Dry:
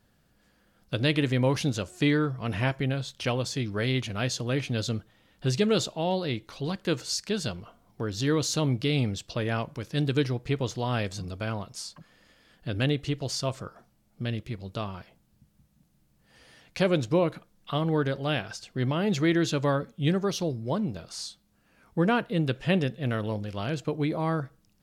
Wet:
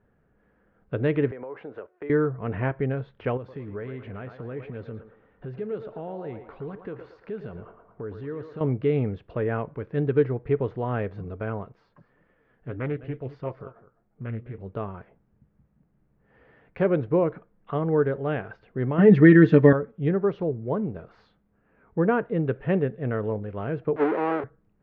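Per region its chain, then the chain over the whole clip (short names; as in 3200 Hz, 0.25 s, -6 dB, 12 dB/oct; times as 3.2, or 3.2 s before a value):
1.31–2.1 gate -38 dBFS, range -10 dB + three-band isolator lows -23 dB, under 340 Hz, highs -13 dB, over 2300 Hz + compressor 16:1, threshold -35 dBFS
3.37–8.61 compressor, threshold -34 dBFS + narrowing echo 0.113 s, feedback 60%, band-pass 990 Hz, level -5.5 dB
11.72–14.58 flange 1.7 Hz, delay 5.4 ms, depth 3.5 ms, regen +58% + echo 0.206 s -16 dB + Doppler distortion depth 0.34 ms
18.98–19.73 high shelf 3300 Hz +11.5 dB + comb 6.6 ms, depth 95% + small resonant body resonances 220/1800 Hz, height 14 dB, ringing for 40 ms
23.96–24.44 half-waves squared off + HPF 270 Hz 24 dB/oct + three-band squash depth 40%
whole clip: LPF 1900 Hz 24 dB/oct; bell 430 Hz +9 dB 0.31 oct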